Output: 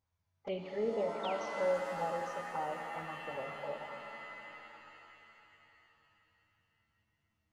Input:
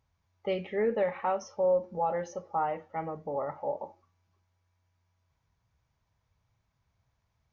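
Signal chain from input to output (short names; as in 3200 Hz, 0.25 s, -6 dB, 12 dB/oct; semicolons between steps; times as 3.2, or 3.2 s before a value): painted sound fall, 1.23–1.59, 470–3800 Hz -38 dBFS; envelope flanger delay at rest 11.1 ms, full sweep at -27.5 dBFS; shimmer reverb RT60 3.3 s, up +7 st, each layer -2 dB, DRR 5.5 dB; gain -6 dB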